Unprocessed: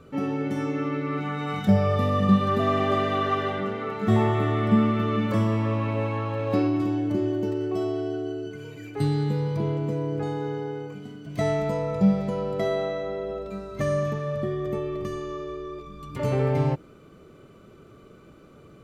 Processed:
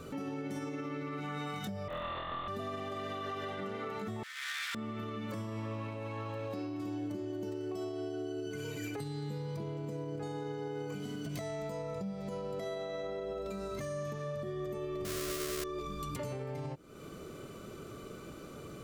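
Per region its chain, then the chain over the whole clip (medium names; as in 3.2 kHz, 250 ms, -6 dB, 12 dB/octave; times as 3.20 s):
1.88–2.48 s: high-pass 730 Hz + LPC vocoder at 8 kHz whisper + flutter echo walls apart 4.1 m, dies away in 1.3 s
4.23–4.75 s: comb filter that takes the minimum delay 0.55 ms + inverse Chebyshev high-pass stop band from 480 Hz, stop band 60 dB
15.05–15.64 s: square wave that keeps the level + Butterworth band-stop 860 Hz, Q 2.6
whole clip: compression 16:1, threshold -37 dBFS; peak limiter -34.5 dBFS; tone controls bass -2 dB, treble +9 dB; trim +4 dB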